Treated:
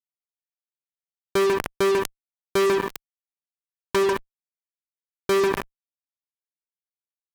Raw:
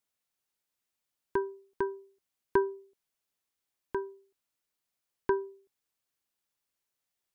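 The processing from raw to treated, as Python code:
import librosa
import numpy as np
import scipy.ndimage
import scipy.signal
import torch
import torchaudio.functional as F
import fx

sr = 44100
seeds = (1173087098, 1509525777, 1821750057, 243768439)

y = fx.peak_eq(x, sr, hz=1100.0, db=11.0, octaves=0.29, at=(2.76, 3.96))
y = y + 10.0 ** (-16.5 / 20.0) * np.pad(y, (int(145 * sr / 1000.0), 0))[:len(y)]
y = fx.room_shoebox(y, sr, seeds[0], volume_m3=4000.0, walls='furnished', distance_m=0.35)
y = fx.fuzz(y, sr, gain_db=51.0, gate_db=-54.0)
y = fx.highpass(y, sr, hz=41.0, slope=6)
y = fx.sustainer(y, sr, db_per_s=67.0)
y = F.gain(torch.from_numpy(y), -5.0).numpy()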